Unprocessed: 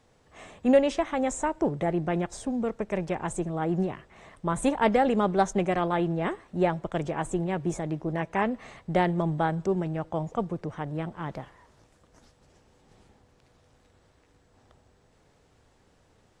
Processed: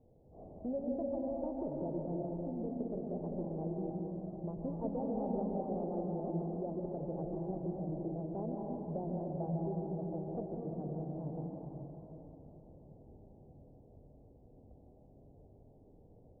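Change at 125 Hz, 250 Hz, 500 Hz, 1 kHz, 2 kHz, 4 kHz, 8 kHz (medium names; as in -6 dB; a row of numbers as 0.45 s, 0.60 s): -8.5 dB, -9.5 dB, -11.0 dB, -17.0 dB, under -40 dB, under -40 dB, under -35 dB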